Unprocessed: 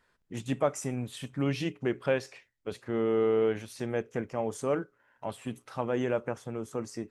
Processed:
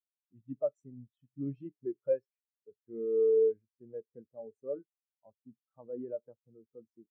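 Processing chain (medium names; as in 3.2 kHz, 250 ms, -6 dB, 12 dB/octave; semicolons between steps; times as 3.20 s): spectral contrast expander 2.5:1; trim -7 dB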